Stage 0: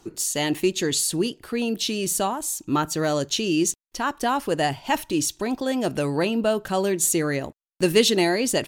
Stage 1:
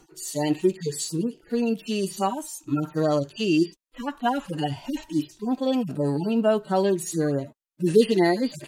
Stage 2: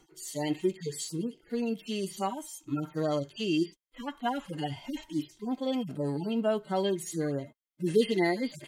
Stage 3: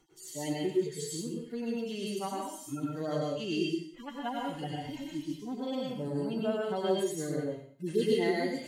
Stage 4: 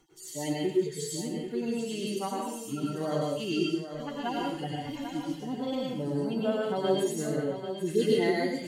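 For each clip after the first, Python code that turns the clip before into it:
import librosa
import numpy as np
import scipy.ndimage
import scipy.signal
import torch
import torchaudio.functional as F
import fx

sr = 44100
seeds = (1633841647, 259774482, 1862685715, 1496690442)

y1 = fx.hpss_only(x, sr, part='harmonic')
y1 = y1 * librosa.db_to_amplitude(1.5)
y2 = fx.small_body(y1, sr, hz=(2100.0, 3200.0), ring_ms=45, db=15)
y2 = y2 * librosa.db_to_amplitude(-7.0)
y3 = fx.rev_plate(y2, sr, seeds[0], rt60_s=0.52, hf_ratio=1.0, predelay_ms=90, drr_db=-2.5)
y3 = y3 * librosa.db_to_amplitude(-6.0)
y4 = y3 + 10.0 ** (-9.5 / 20.0) * np.pad(y3, (int(792 * sr / 1000.0), 0))[:len(y3)]
y4 = y4 * librosa.db_to_amplitude(2.5)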